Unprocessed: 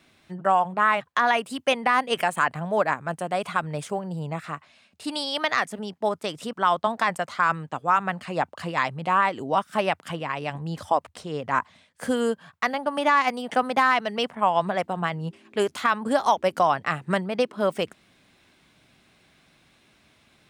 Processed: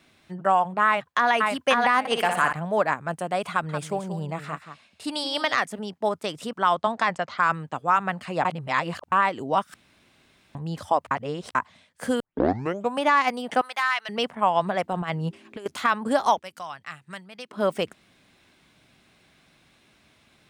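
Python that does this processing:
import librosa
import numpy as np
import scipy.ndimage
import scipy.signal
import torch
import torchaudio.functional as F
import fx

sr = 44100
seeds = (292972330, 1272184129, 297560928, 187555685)

y = fx.echo_throw(x, sr, start_s=0.86, length_s=0.46, ms=540, feedback_pct=20, wet_db=-2.0)
y = fx.room_flutter(y, sr, wall_m=10.4, rt60_s=0.57, at=(1.99, 2.53))
y = fx.echo_single(y, sr, ms=179, db=-10.0, at=(3.51, 5.57))
y = fx.lowpass(y, sr, hz=fx.line((6.75, 12000.0), (7.37, 5000.0)), slope=24, at=(6.75, 7.37), fade=0.02)
y = fx.highpass(y, sr, hz=1400.0, slope=12, at=(13.61, 14.09))
y = fx.over_compress(y, sr, threshold_db=-28.0, ratio=-0.5, at=(14.92, 15.66))
y = fx.tone_stack(y, sr, knobs='5-5-5', at=(16.39, 17.51))
y = fx.edit(y, sr, fx.reverse_span(start_s=8.45, length_s=0.67),
    fx.room_tone_fill(start_s=9.74, length_s=0.81),
    fx.reverse_span(start_s=11.11, length_s=0.44),
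    fx.tape_start(start_s=12.2, length_s=0.81), tone=tone)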